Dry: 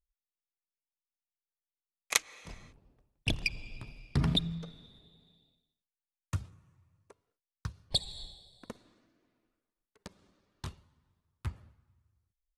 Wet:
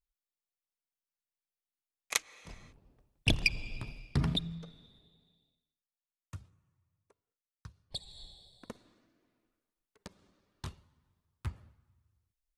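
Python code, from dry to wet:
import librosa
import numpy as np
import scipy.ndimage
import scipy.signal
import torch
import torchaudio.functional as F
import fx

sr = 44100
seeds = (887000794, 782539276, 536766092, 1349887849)

y = fx.gain(x, sr, db=fx.line((2.34, -3.5), (3.35, 4.0), (3.89, 4.0), (4.36, -4.0), (4.9, -4.0), (6.34, -11.0), (7.95, -11.0), (8.43, -1.0)))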